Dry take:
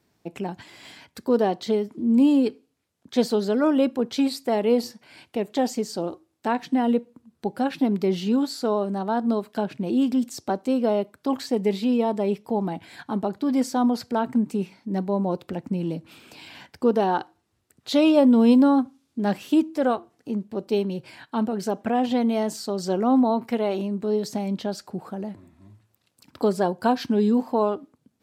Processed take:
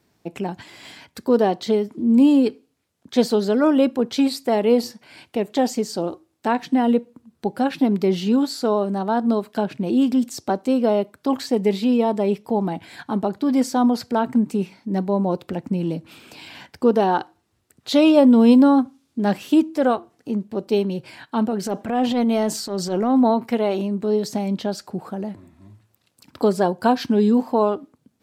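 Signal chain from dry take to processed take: 21.64–23.34 transient shaper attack -10 dB, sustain +4 dB; gain +3.5 dB

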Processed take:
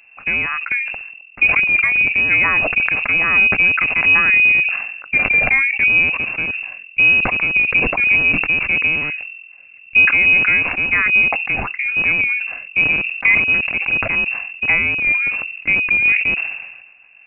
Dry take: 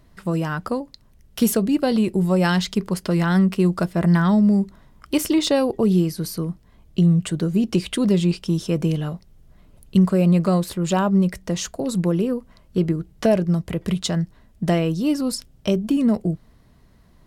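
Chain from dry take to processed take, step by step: rattling part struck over -24 dBFS, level -21 dBFS; inverted band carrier 2700 Hz; sustainer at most 50 dB/s; gain +3 dB

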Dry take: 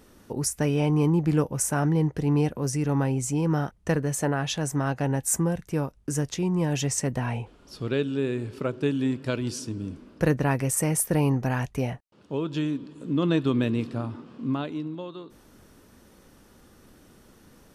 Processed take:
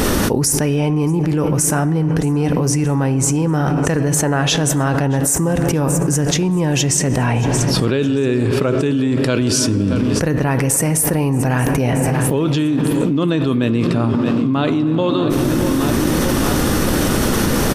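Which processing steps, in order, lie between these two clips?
feedback echo 0.627 s, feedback 51%, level -20 dB; on a send at -13 dB: reverb RT60 2.4 s, pre-delay 4 ms; on the sum: fast leveller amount 100%; gain +2.5 dB

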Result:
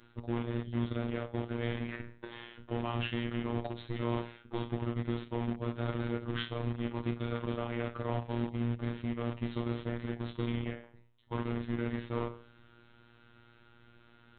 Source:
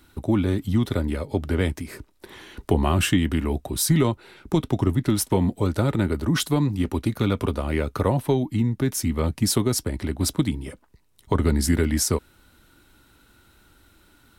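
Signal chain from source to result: spectral trails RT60 0.48 s; reverse; compressor 16:1, threshold -28 dBFS, peak gain reduction 16 dB; reverse; AM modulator 170 Hz, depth 40%; in parallel at -8 dB: bit-crush 5-bit; on the sum: downsampling 8000 Hz; robotiser 118 Hz

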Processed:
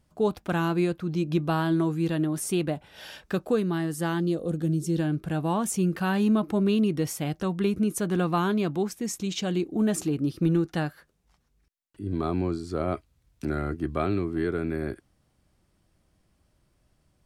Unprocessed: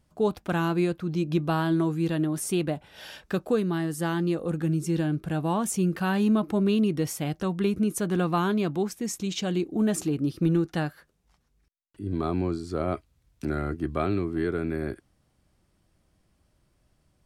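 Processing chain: spectral gain 4.2–4.99, 750–2900 Hz -8 dB

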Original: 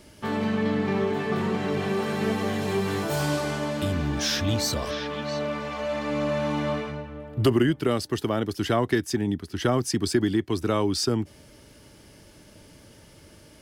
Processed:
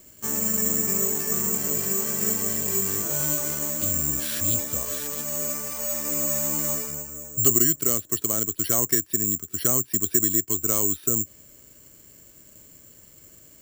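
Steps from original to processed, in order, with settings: bell 800 Hz -11 dB 0.21 oct; careless resampling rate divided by 6×, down filtered, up zero stuff; gain -6.5 dB

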